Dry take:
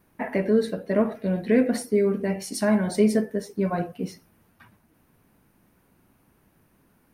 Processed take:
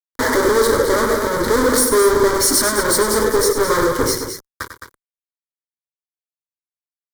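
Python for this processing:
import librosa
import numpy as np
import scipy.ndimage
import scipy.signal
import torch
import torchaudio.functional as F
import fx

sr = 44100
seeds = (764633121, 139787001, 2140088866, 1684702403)

y = fx.fuzz(x, sr, gain_db=48.0, gate_db=-49.0)
y = fx.fixed_phaser(y, sr, hz=720.0, stages=6)
y = fx.echo_multitap(y, sr, ms=(97, 214), db=(-9.5, -9.0))
y = y * 10.0 ** (2.0 / 20.0)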